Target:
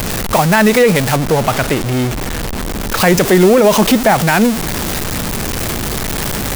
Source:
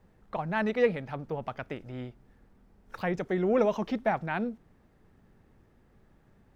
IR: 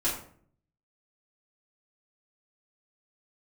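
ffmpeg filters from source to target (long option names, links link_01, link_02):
-af "aeval=exprs='val(0)+0.5*0.0224*sgn(val(0))':channel_layout=same,asetnsamples=nb_out_samples=441:pad=0,asendcmd='1.16 highshelf g 6.5;3 highshelf g 12',highshelf=frequency=4300:gain=12,alimiter=level_in=19dB:limit=-1dB:release=50:level=0:latency=1,volume=-1dB"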